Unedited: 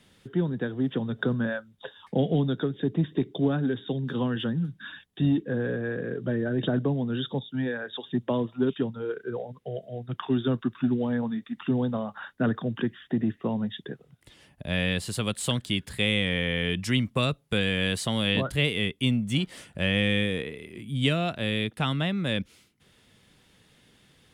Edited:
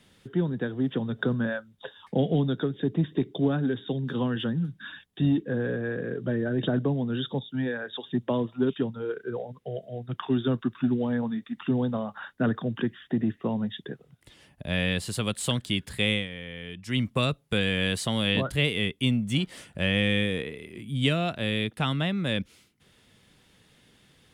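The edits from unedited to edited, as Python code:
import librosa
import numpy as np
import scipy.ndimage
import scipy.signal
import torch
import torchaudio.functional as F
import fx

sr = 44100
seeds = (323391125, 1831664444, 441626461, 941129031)

y = fx.edit(x, sr, fx.fade_down_up(start_s=16.12, length_s=0.89, db=-12.0, fade_s=0.16), tone=tone)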